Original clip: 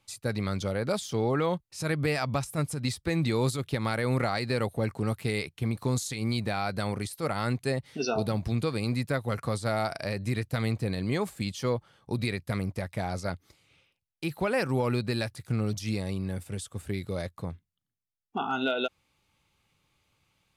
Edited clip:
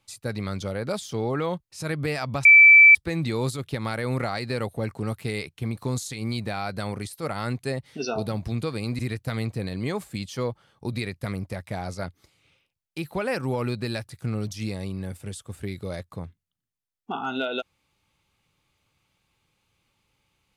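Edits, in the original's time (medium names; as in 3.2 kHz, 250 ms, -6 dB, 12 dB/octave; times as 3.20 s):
2.45–2.95 s: bleep 2.32 kHz -8 dBFS
8.99–10.25 s: delete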